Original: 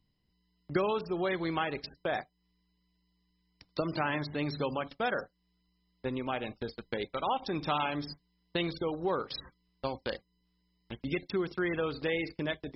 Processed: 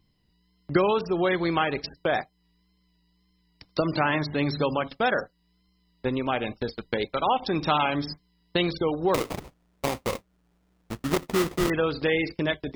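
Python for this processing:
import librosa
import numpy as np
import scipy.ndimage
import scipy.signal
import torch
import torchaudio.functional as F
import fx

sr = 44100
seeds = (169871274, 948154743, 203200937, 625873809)

y = fx.wow_flutter(x, sr, seeds[0], rate_hz=2.1, depth_cents=45.0)
y = fx.sample_hold(y, sr, seeds[1], rate_hz=1600.0, jitter_pct=20, at=(9.14, 11.7))
y = F.gain(torch.from_numpy(y), 7.5).numpy()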